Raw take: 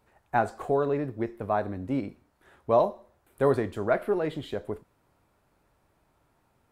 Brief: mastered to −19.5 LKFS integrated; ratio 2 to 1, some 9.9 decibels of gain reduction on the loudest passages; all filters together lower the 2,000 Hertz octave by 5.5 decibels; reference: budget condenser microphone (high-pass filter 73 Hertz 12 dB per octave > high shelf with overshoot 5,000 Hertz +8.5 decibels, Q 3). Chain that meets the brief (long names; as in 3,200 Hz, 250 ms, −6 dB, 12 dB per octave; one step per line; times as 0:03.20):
parametric band 2,000 Hz −7 dB
downward compressor 2 to 1, threshold −36 dBFS
high-pass filter 73 Hz 12 dB per octave
high shelf with overshoot 5,000 Hz +8.5 dB, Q 3
level +17.5 dB